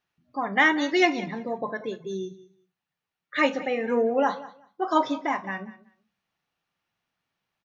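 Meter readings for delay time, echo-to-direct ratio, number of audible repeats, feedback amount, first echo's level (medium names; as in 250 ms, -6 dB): 187 ms, -18.0 dB, 2, 17%, -18.0 dB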